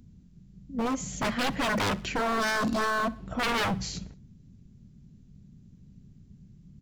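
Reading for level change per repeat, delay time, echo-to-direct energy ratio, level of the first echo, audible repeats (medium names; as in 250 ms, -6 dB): -6.5 dB, 62 ms, -20.5 dB, -21.5 dB, 3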